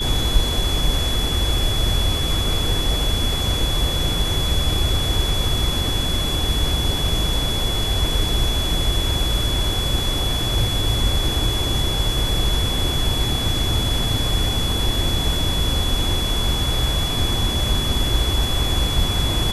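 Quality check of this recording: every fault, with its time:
tone 3400 Hz -24 dBFS

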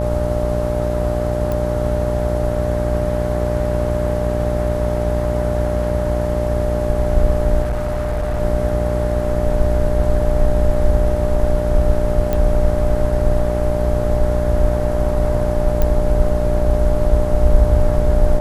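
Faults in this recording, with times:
buzz 60 Hz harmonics 14 -21 dBFS
tone 600 Hz -22 dBFS
1.52 pop -11 dBFS
7.62–8.41 clipped -16.5 dBFS
12.33 pop -8 dBFS
15.82 pop -6 dBFS

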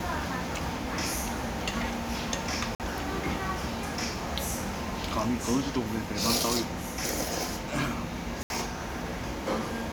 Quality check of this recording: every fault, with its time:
2.75–2.8 gap 48 ms
8.43–8.5 gap 71 ms

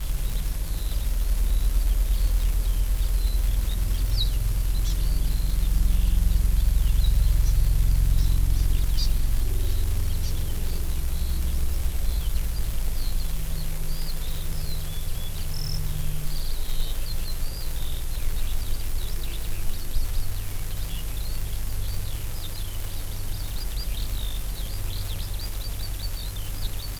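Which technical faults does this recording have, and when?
crackle 240/s -28 dBFS

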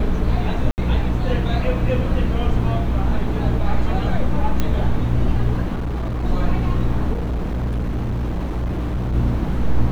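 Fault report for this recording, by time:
hum 60 Hz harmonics 5 -23 dBFS
0.71–0.78 gap 69 ms
4.6 pop -6 dBFS
5.74–6.25 clipped -20.5 dBFS
7.12–9.15 clipped -19 dBFS

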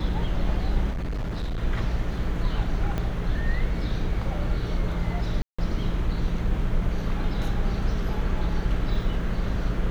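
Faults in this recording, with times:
0.9–1.6 clipped -25.5 dBFS
2.98 pop -16 dBFS
5.42–5.58 gap 0.165 s

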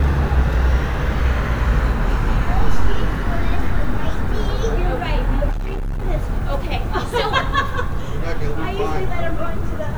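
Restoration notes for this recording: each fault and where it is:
5.51–6.05 clipped -20.5 dBFS

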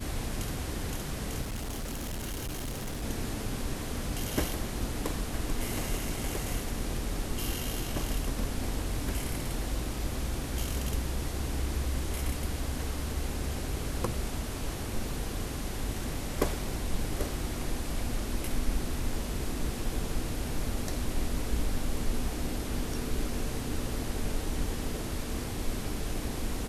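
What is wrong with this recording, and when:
1.41–3.04 clipped -32 dBFS

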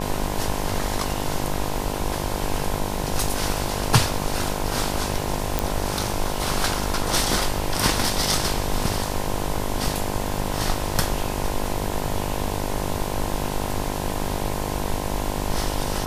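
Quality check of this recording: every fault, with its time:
buzz 50 Hz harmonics 21 -29 dBFS
5.59 pop

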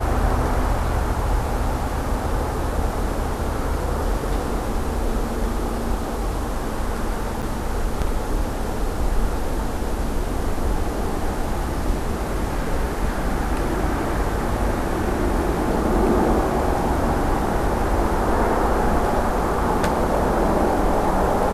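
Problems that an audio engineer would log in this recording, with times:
7.42–7.43 gap 7.1 ms

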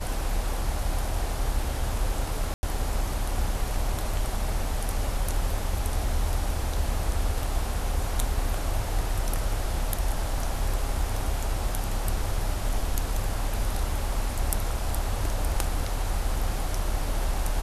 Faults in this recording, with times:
2.54–2.63 gap 90 ms

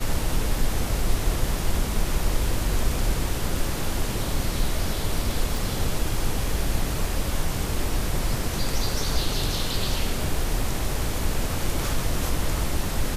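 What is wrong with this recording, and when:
5.57 pop

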